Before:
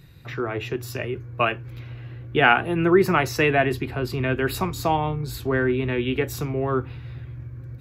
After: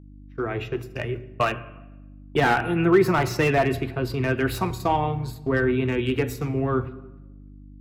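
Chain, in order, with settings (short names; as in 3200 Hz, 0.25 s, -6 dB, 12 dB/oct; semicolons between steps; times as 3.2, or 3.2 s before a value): bin magnitudes rounded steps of 15 dB; gate -30 dBFS, range -59 dB; buzz 50 Hz, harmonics 6, -46 dBFS -4 dB/oct; reverb RT60 1.0 s, pre-delay 13 ms, DRR 14 dB; slew limiter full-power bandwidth 170 Hz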